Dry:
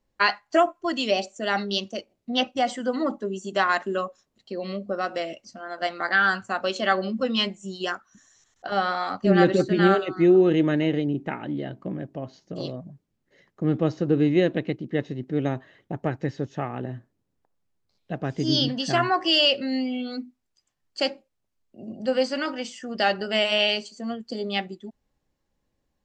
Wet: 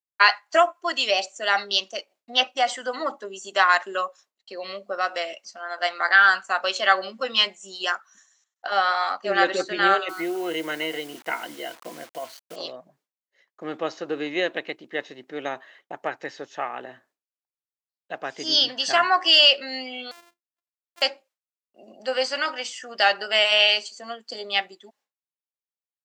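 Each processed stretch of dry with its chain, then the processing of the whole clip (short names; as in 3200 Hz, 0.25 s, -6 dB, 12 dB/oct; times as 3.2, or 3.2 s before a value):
8.82–9.49 HPF 200 Hz + mismatched tape noise reduction decoder only
10.09–12.56 ripple EQ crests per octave 1.9, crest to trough 12 dB + compressor 2:1, threshold -21 dBFS + requantised 8-bit, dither none
20.11–21.02 sample sorter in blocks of 128 samples + compressor, threshold -48 dBFS + notches 50/100/150/200/250/300/350 Hz
whole clip: expander -51 dBFS; HPF 780 Hz 12 dB/oct; gain +5.5 dB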